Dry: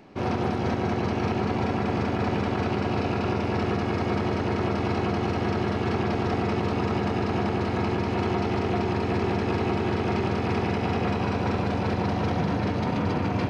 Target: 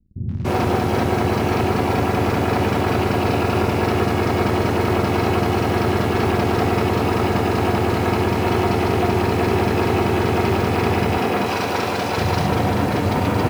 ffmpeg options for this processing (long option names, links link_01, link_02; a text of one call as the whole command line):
ffmpeg -i in.wav -filter_complex "[0:a]asettb=1/sr,asplit=3[link_01][link_02][link_03];[link_01]atrim=end=11.174[link_04];[link_02]atrim=start=11.17:end=12.18,asetpts=PTS-STARTPTS,afade=type=in:duration=0.004:curve=qsin,afade=type=out:start_time=1.006:duration=0.004:curve=qsin,aemphasis=mode=production:type=bsi[link_05];[link_03]atrim=start=12.176[link_06];[link_04][link_05]acrossfade=duration=0.004:curve1=hsin:curve2=qsin[link_07];[link_07][link_06]acrossfade=duration=0.004:curve1=qsin:curve2=hsin,acrusher=bits=6:mix=0:aa=0.5,acrossover=split=190[link_08][link_09];[link_09]adelay=290[link_10];[link_08][link_10]amix=inputs=2:normalize=0,volume=8dB" out.wav